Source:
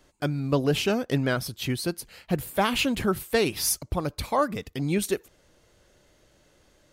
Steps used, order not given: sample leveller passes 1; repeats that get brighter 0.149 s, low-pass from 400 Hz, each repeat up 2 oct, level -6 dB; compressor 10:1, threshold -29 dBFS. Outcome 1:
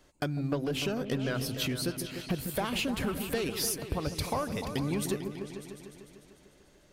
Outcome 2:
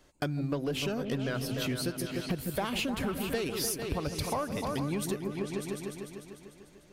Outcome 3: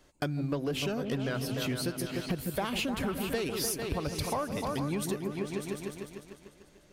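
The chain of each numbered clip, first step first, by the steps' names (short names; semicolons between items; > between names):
sample leveller > compressor > repeats that get brighter; sample leveller > repeats that get brighter > compressor; repeats that get brighter > sample leveller > compressor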